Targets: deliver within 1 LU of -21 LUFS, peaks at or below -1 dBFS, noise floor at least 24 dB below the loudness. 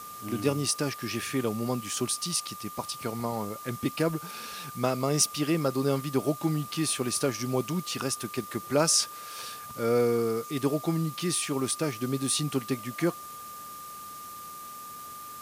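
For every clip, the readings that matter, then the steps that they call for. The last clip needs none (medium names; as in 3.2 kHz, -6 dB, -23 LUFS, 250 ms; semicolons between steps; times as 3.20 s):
steady tone 1.2 kHz; tone level -41 dBFS; noise floor -43 dBFS; noise floor target -53 dBFS; loudness -29.0 LUFS; peak level -10.0 dBFS; loudness target -21.0 LUFS
-> band-stop 1.2 kHz, Q 30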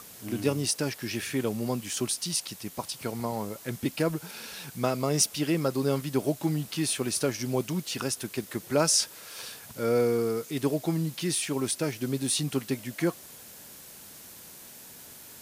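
steady tone not found; noise floor -48 dBFS; noise floor target -53 dBFS
-> noise print and reduce 6 dB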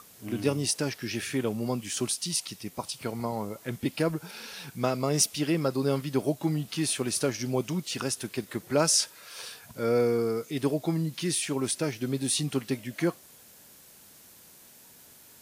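noise floor -54 dBFS; loudness -29.0 LUFS; peak level -10.5 dBFS; loudness target -21.0 LUFS
-> trim +8 dB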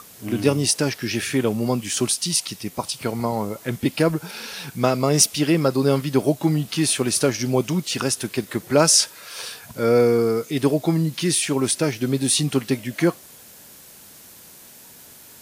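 loudness -21.0 LUFS; peak level -2.5 dBFS; noise floor -46 dBFS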